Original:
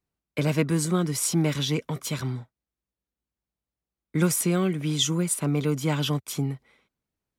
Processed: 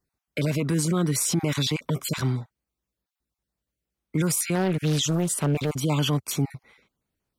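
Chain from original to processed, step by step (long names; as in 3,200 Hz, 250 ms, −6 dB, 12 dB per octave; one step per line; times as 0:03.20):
time-frequency cells dropped at random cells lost 21%
brickwall limiter −20.5 dBFS, peak gain reduction 10.5 dB
0:04.55–0:05.77: highs frequency-modulated by the lows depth 0.48 ms
level +5 dB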